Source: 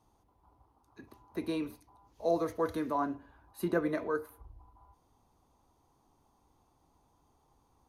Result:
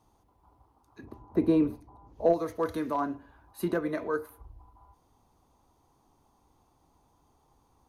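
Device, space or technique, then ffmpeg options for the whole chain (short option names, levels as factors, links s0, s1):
limiter into clipper: -filter_complex "[0:a]alimiter=limit=0.0891:level=0:latency=1:release=450,asoftclip=type=hard:threshold=0.0708,asplit=3[s0][s1][s2];[s0]afade=t=out:st=1.03:d=0.02[s3];[s1]tiltshelf=f=1300:g=9.5,afade=t=in:st=1.03:d=0.02,afade=t=out:st=2.32:d=0.02[s4];[s2]afade=t=in:st=2.32:d=0.02[s5];[s3][s4][s5]amix=inputs=3:normalize=0,volume=1.41"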